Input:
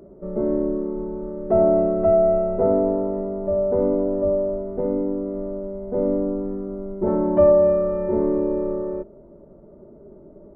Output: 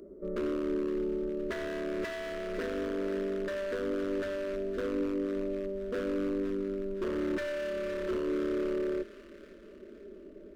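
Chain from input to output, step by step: bass shelf 200 Hz -6 dB; compression 12:1, threshold -24 dBFS, peak gain reduction 13 dB; wavefolder -24.5 dBFS; static phaser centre 330 Hz, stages 4; on a send: feedback echo behind a high-pass 514 ms, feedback 51%, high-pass 1.6 kHz, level -10 dB

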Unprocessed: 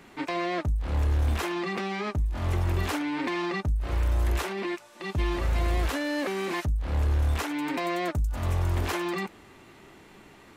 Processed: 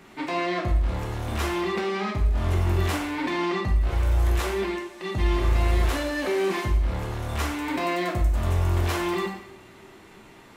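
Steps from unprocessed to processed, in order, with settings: plate-style reverb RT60 0.76 s, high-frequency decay 0.95×, DRR 0.5 dB

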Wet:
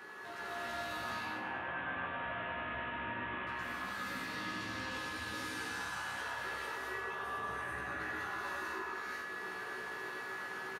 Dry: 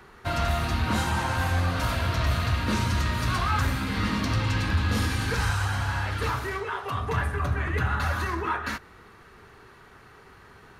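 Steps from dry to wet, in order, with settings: 0.92–3.47 s: CVSD coder 16 kbps; high-pass 270 Hz 12 dB/octave; compression, threshold -44 dBFS, peak gain reduction 19 dB; peak limiter -40 dBFS, peak gain reduction 8.5 dB; flange 1 Hz, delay 8.6 ms, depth 7.2 ms, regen +59%; whistle 1.7 kHz -54 dBFS; doubling 16 ms -3 dB; feedback delay 103 ms, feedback 47%, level -9.5 dB; gated-style reverb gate 490 ms rising, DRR -7 dB; trim +1.5 dB

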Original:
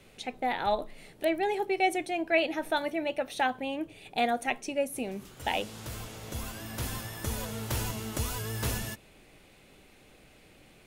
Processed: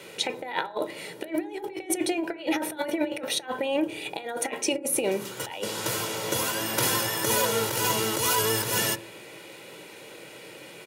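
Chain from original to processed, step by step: Bessel high-pass 210 Hz, order 8; comb 2.1 ms, depth 51%; compressor with a negative ratio -36 dBFS, ratio -0.5; on a send: reverberation RT60 0.55 s, pre-delay 3 ms, DRR 12 dB; on the sum: trim +8.5 dB

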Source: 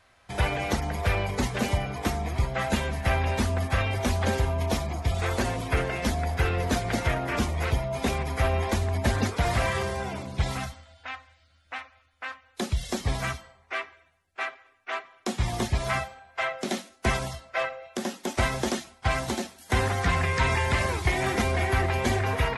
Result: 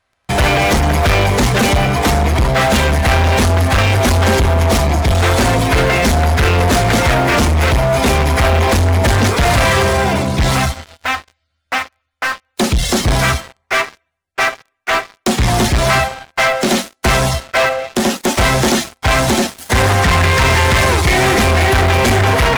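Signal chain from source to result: waveshaping leveller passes 5; trim +3 dB

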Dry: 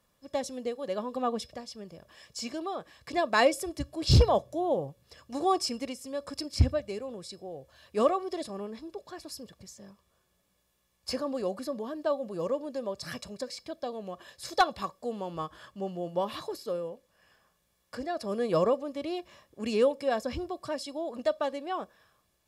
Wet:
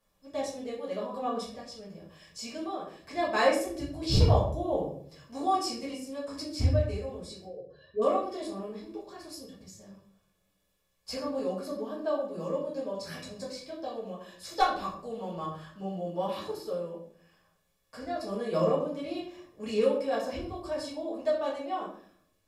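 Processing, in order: 7.45–8.02 s: spectral contrast enhancement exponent 2.5; simulated room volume 73 m³, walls mixed, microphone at 1.6 m; trim -9 dB

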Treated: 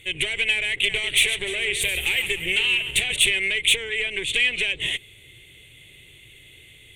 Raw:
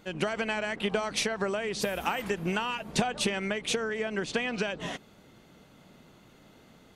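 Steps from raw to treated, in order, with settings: 0.66–3.31 s: backward echo that repeats 150 ms, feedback 47%, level -10.5 dB; Chebyshev shaper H 5 -8 dB, 6 -13 dB, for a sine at -14 dBFS; FFT filter 120 Hz 0 dB, 210 Hz -24 dB, 380 Hz -7 dB, 710 Hz -21 dB, 1.4 kHz -21 dB, 2.1 kHz +8 dB, 3.5 kHz +8 dB, 5 kHz -21 dB, 8.7 kHz +10 dB, 14 kHz -1 dB

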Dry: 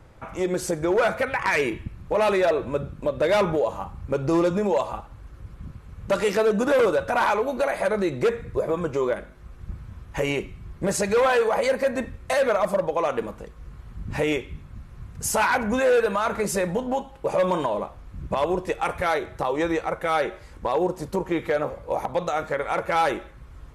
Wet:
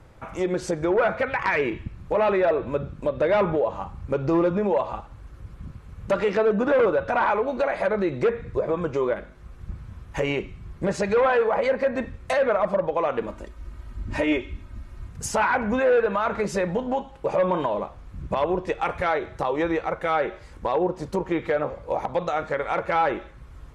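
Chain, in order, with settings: low-pass that closes with the level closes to 2.3 kHz, closed at -18 dBFS; 13.28–15.09 s: comb 3.2 ms, depth 71%

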